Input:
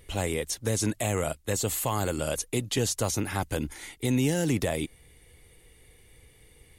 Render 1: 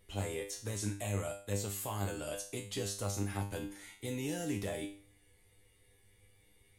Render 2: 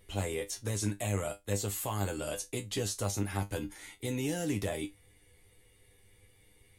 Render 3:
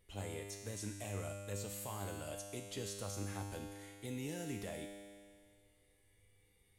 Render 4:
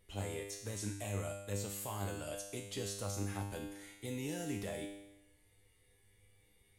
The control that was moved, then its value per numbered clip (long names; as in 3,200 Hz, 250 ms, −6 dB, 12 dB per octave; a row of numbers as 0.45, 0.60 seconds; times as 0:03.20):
tuned comb filter, decay: 0.43, 0.17, 2, 0.91 seconds